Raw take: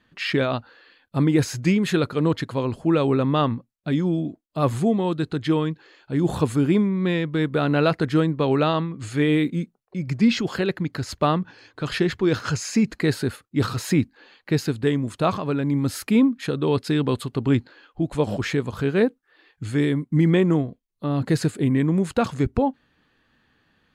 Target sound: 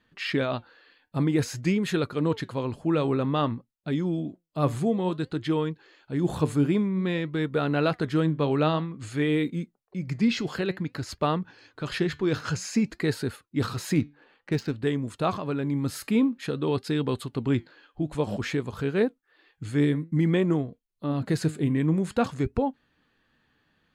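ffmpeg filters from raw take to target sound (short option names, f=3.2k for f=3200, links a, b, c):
-filter_complex "[0:a]asettb=1/sr,asplit=3[a][b][c];[a]atrim=end=13.954[d];[b]atrim=start=13.95:end=14.82,asetpts=PTS-STARTPTS,afade=t=in:d=0.004:c=qsin,afade=t=out:st=0.866:d=0.004:c=qsin,adynamicsmooth=sensitivity=5.5:basefreq=2.2k[e];[c]atrim=start=14.816[f];[d][e]acrossfade=d=0.004:c1=hsin:c2=qsin[g];[g][f]acrossfade=d=0.004:c1=qsin:c2=hsin,flanger=delay=2.1:depth=4.8:regen=85:speed=0.53:shape=sinusoidal"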